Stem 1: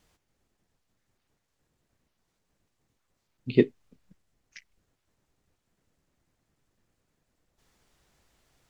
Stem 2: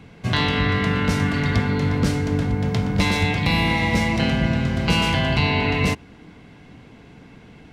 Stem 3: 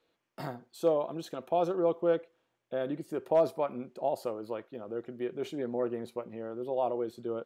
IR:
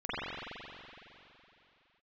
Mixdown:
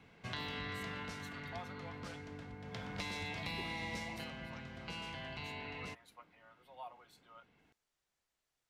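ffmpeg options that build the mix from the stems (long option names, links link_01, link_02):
-filter_complex "[0:a]volume=-16dB[link_01];[1:a]lowpass=frequency=3900:poles=1,afade=type=out:start_time=0.94:duration=0.3:silence=0.375837,afade=type=in:start_time=2.64:duration=0.37:silence=0.316228,afade=type=out:start_time=3.96:duration=0.35:silence=0.298538[link_02];[2:a]highpass=frequency=870:width=0.5412,highpass=frequency=870:width=1.3066,aecho=1:1:5.6:0.75,volume=-9dB[link_03];[link_01][link_02][link_03]amix=inputs=3:normalize=0,lowshelf=frequency=450:gain=-10.5,acrossover=split=650|4200[link_04][link_05][link_06];[link_04]acompressor=threshold=-44dB:ratio=4[link_07];[link_05]acompressor=threshold=-45dB:ratio=4[link_08];[link_06]acompressor=threshold=-49dB:ratio=4[link_09];[link_07][link_08][link_09]amix=inputs=3:normalize=0"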